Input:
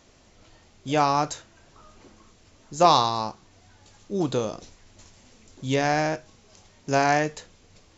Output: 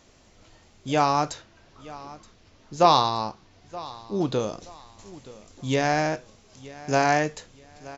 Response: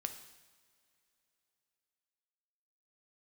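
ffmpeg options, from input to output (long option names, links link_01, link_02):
-filter_complex "[0:a]asettb=1/sr,asplit=3[link_01][link_02][link_03];[link_01]atrim=end=1.324[link_04];[link_02]atrim=start=1.32:end=4.4,asetpts=PTS-STARTPTS,afade=type=in:duration=0.004:curve=qsin,afade=type=out:start_time=3.076:duration=0.004:curve=qsin,lowpass=frequency=5800:width=0.5412,lowpass=frequency=5800:width=1.3066[link_05];[link_03]atrim=start=4.396[link_06];[link_04][link_05]acrossfade=duration=0.004:curve1=hsin:curve2=qsin[link_07];[link_07][link_06]acrossfade=duration=0.004:curve1=qsin:curve2=hsin,aecho=1:1:924|1848|2772:0.112|0.0337|0.0101"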